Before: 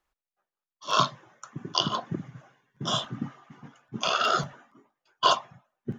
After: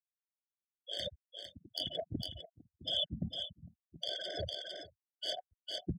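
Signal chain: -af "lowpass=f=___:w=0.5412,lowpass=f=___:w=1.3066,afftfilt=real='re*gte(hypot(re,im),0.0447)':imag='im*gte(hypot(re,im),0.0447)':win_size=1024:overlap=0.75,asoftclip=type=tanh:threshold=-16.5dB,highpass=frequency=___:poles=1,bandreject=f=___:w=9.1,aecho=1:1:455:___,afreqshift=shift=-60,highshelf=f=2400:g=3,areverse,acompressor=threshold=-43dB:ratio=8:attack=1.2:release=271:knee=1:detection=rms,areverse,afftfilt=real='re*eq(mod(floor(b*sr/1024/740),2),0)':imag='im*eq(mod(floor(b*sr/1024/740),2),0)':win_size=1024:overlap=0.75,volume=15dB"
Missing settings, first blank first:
5700, 5700, 1400, 3800, 0.0668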